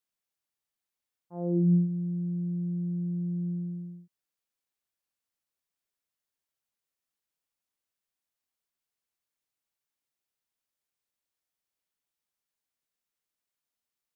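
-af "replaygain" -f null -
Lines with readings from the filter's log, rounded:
track_gain = +17.7 dB
track_peak = 0.110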